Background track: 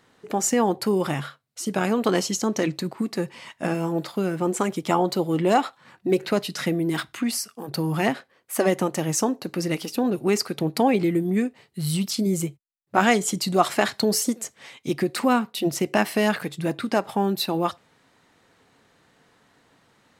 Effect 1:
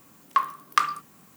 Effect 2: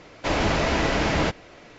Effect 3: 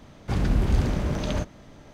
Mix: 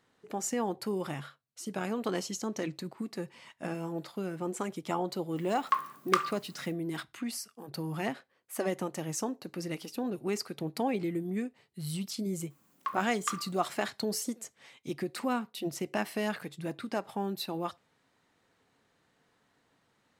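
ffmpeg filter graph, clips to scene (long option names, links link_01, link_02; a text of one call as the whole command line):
ffmpeg -i bed.wav -i cue0.wav -filter_complex "[1:a]asplit=2[link_01][link_02];[0:a]volume=-11dB[link_03];[link_01]atrim=end=1.36,asetpts=PTS-STARTPTS,volume=-5.5dB,afade=type=in:duration=0.004:curve=hsin,afade=type=out:start_time=1.356:duration=0.004:curve=hsin,adelay=5360[link_04];[link_02]atrim=end=1.36,asetpts=PTS-STARTPTS,volume=-13dB,afade=type=in:duration=0.004:curve=hsin,afade=type=out:start_time=1.356:duration=0.004:curve=hsin,adelay=12500[link_05];[link_03][link_04][link_05]amix=inputs=3:normalize=0" out.wav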